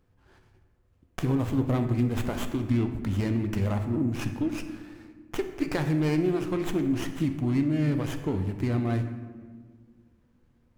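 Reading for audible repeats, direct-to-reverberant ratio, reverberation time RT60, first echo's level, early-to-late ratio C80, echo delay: no echo, 6.0 dB, 1.6 s, no echo, 10.5 dB, no echo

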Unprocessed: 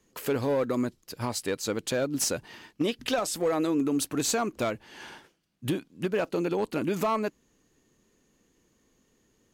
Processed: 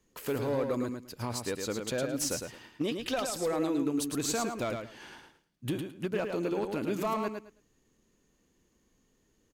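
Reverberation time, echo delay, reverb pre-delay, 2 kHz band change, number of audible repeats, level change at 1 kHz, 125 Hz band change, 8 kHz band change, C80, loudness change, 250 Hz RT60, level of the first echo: no reverb, 108 ms, no reverb, -4.0 dB, 3, -4.0 dB, -2.5 dB, -4.0 dB, no reverb, -3.5 dB, no reverb, -5.5 dB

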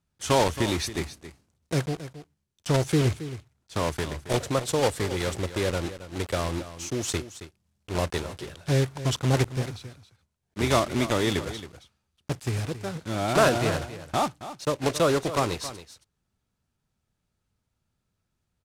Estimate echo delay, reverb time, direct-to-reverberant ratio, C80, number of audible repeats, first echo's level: 272 ms, no reverb, no reverb, no reverb, 1, -13.5 dB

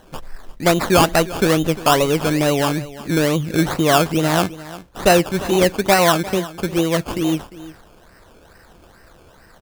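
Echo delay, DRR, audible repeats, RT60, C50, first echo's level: 351 ms, no reverb, 1, no reverb, no reverb, -17.0 dB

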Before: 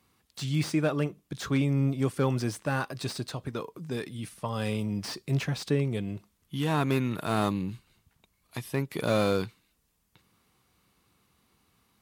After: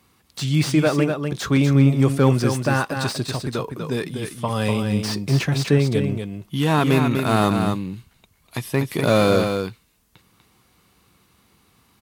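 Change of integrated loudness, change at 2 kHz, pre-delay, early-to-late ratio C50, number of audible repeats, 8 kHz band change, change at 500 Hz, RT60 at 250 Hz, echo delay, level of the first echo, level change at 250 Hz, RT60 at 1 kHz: +9.5 dB, +9.5 dB, no reverb, no reverb, 1, +9.5 dB, +9.5 dB, no reverb, 245 ms, -6.0 dB, +9.5 dB, no reverb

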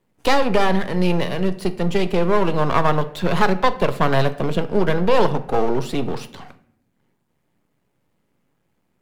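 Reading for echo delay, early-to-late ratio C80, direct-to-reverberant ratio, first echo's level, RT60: no echo, 18.5 dB, 10.0 dB, no echo, 0.70 s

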